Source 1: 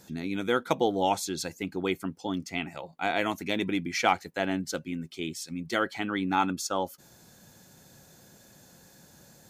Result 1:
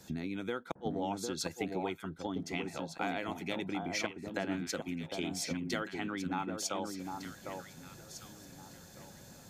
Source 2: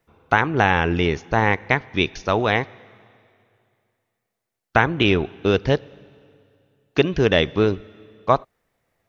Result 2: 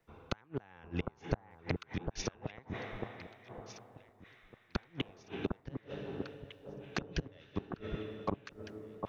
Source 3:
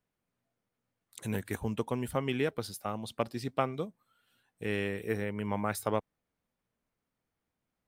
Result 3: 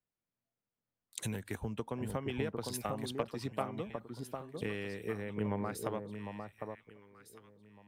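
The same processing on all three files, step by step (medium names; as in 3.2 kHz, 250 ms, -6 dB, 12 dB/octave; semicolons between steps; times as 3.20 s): treble shelf 9.1 kHz -5.5 dB; inverted gate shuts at -11 dBFS, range -38 dB; compression 8:1, threshold -40 dBFS; on a send: echo whose repeats swap between lows and highs 753 ms, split 1.2 kHz, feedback 52%, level -3 dB; on the sum: three bands expanded up and down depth 40%; trim +5.5 dB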